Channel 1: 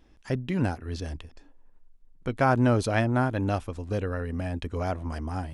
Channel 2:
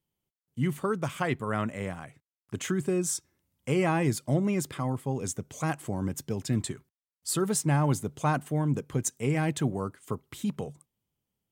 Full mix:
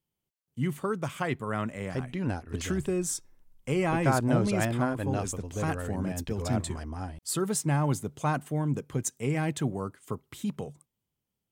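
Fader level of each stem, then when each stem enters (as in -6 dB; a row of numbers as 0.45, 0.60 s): -4.5, -1.5 dB; 1.65, 0.00 s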